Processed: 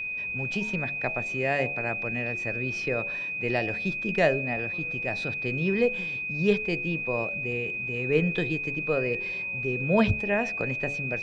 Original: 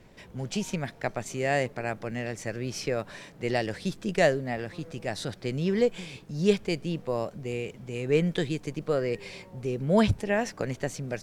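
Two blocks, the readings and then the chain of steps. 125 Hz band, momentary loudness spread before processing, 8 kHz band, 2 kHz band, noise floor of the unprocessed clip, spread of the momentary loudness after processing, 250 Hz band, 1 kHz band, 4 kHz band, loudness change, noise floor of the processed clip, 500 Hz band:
-0.5 dB, 11 LU, under -10 dB, +9.0 dB, -51 dBFS, 5 LU, -0.5 dB, -0.5 dB, -3.0 dB, +2.5 dB, -33 dBFS, -0.5 dB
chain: LPF 3700 Hz 12 dB/oct; whine 2500 Hz -30 dBFS; de-hum 71.49 Hz, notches 12

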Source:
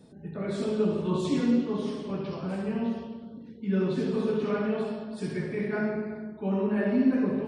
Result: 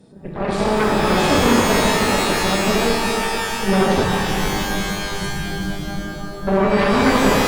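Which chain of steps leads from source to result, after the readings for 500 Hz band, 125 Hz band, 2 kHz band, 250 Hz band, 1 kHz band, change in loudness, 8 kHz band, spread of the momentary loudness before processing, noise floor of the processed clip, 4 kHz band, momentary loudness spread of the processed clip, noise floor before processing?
+10.5 dB, +10.0 dB, +19.0 dB, +6.5 dB, +21.0 dB, +10.5 dB, n/a, 11 LU, -31 dBFS, +23.0 dB, 11 LU, -46 dBFS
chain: added harmonics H 8 -8 dB, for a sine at -13.5 dBFS; spectral delete 4.04–6.47, 210–5300 Hz; shimmer reverb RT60 3.1 s, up +12 st, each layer -2 dB, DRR 1.5 dB; gain +4 dB

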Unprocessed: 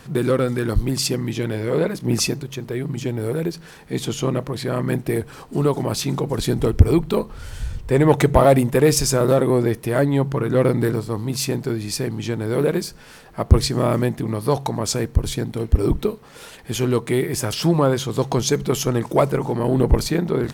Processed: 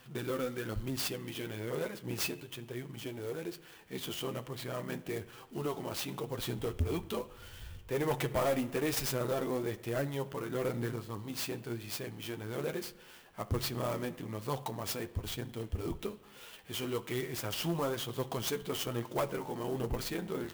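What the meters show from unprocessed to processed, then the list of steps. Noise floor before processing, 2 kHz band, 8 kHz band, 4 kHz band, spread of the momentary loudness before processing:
-43 dBFS, -11.5 dB, -15.0 dB, -11.5 dB, 11 LU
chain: low shelf 480 Hz -6.5 dB; added harmonics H 3 -16 dB, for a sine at -4.5 dBFS; bell 3000 Hz +8 dB 0.39 oct; flange 1.1 Hz, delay 7.5 ms, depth 4.5 ms, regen +31%; soft clip -22.5 dBFS, distortion -11 dB; spring tank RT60 1.1 s, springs 34/57 ms, chirp 55 ms, DRR 16 dB; clock jitter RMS 0.03 ms; gain -2.5 dB

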